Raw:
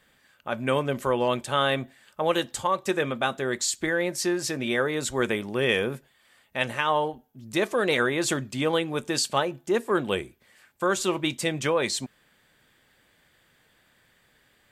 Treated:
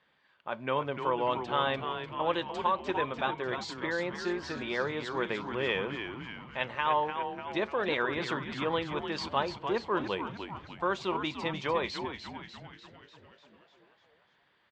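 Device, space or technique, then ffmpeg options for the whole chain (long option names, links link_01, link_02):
frequency-shifting delay pedal into a guitar cabinet: -filter_complex "[0:a]asplit=9[link_01][link_02][link_03][link_04][link_05][link_06][link_07][link_08][link_09];[link_02]adelay=297,afreqshift=-120,volume=-7.5dB[link_10];[link_03]adelay=594,afreqshift=-240,volume=-11.9dB[link_11];[link_04]adelay=891,afreqshift=-360,volume=-16.4dB[link_12];[link_05]adelay=1188,afreqshift=-480,volume=-20.8dB[link_13];[link_06]adelay=1485,afreqshift=-600,volume=-25.2dB[link_14];[link_07]adelay=1782,afreqshift=-720,volume=-29.7dB[link_15];[link_08]adelay=2079,afreqshift=-840,volume=-34.1dB[link_16];[link_09]adelay=2376,afreqshift=-960,volume=-38.6dB[link_17];[link_01][link_10][link_11][link_12][link_13][link_14][link_15][link_16][link_17]amix=inputs=9:normalize=0,highpass=97,equalizer=frequency=110:width_type=q:width=4:gain=-6,equalizer=frequency=240:width_type=q:width=4:gain=-5,equalizer=frequency=970:width_type=q:width=4:gain=8,lowpass=frequency=4400:width=0.5412,lowpass=frequency=4400:width=1.3066,volume=-7dB"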